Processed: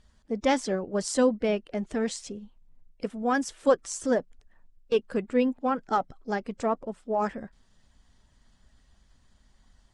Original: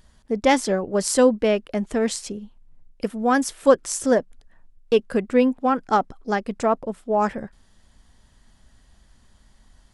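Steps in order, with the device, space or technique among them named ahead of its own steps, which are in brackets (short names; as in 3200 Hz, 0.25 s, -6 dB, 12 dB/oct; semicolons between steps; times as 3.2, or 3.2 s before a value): clip after many re-uploads (LPF 8800 Hz 24 dB/oct; bin magnitudes rounded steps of 15 dB); gain -6 dB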